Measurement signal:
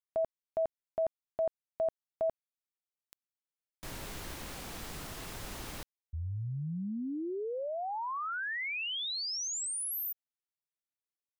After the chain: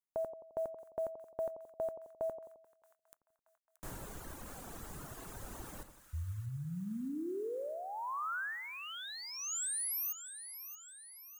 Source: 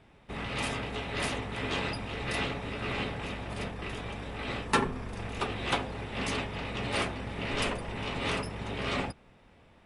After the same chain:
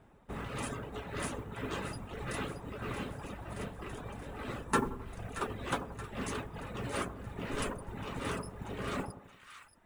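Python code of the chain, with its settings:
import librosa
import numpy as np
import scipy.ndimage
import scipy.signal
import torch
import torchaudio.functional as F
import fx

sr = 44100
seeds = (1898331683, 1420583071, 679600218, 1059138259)

y = fx.dereverb_blind(x, sr, rt60_s=1.4)
y = fx.dynamic_eq(y, sr, hz=740.0, q=2.3, threshold_db=-48.0, ratio=4.0, max_db=-6)
y = fx.mod_noise(y, sr, seeds[0], snr_db=30)
y = fx.band_shelf(y, sr, hz=3300.0, db=-9.0, octaves=1.7)
y = fx.echo_split(y, sr, split_hz=1200.0, low_ms=87, high_ms=627, feedback_pct=52, wet_db=-11.0)
y = F.gain(torch.from_numpy(y), -1.0).numpy()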